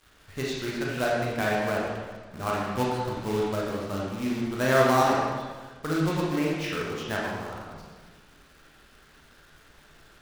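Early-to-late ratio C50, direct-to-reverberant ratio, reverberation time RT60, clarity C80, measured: −1.5 dB, −5.0 dB, 1.4 s, 1.5 dB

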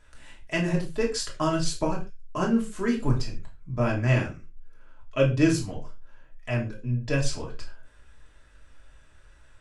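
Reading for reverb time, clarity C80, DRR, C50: non-exponential decay, 16.5 dB, −3.0 dB, 10.5 dB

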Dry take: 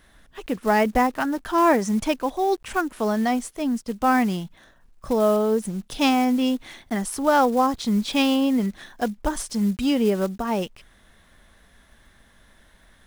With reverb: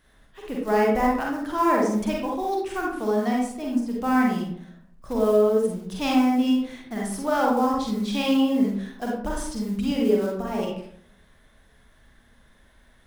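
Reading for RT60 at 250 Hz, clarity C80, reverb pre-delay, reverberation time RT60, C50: 0.80 s, 5.5 dB, 38 ms, 0.65 s, 0.0 dB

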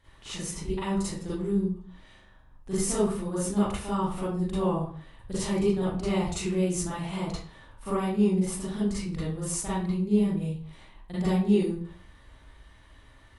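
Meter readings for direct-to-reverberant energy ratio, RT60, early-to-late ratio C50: −11.0 dB, 0.45 s, −2.0 dB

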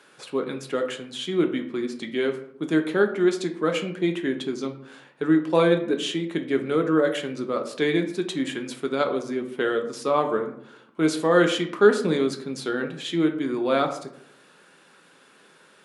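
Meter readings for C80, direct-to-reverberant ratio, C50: 13.5 dB, 4.0 dB, 10.5 dB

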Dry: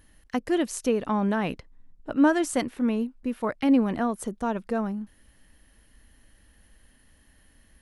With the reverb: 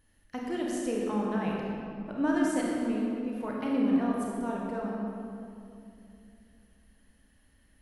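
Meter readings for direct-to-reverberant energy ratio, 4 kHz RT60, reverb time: −3.0 dB, 1.6 s, 2.7 s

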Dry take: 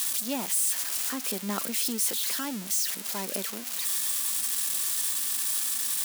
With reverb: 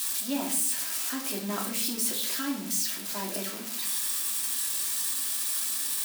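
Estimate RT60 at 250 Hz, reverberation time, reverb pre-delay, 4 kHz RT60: 0.95 s, 0.60 s, 3 ms, 0.45 s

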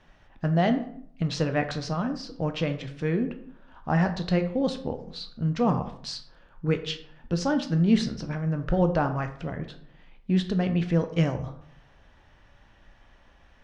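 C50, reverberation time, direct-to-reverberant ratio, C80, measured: 11.5 dB, 0.65 s, 7.0 dB, 14.5 dB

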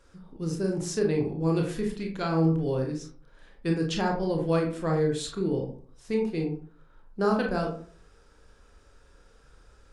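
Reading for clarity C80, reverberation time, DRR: 11.5 dB, 0.45 s, 0.5 dB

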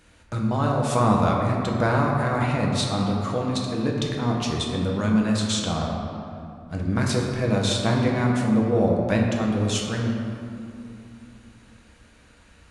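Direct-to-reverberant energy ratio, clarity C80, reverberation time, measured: −1.5 dB, 3.0 dB, 2.8 s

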